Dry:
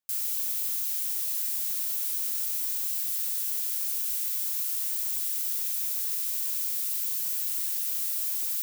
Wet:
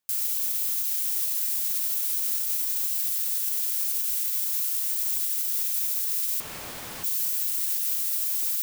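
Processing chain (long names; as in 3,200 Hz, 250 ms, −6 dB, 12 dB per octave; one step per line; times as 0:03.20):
brickwall limiter −23 dBFS, peak gain reduction 6 dB
0:06.40–0:07.04: mid-hump overdrive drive 24 dB, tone 1,300 Hz, clips at −23 dBFS
level +6 dB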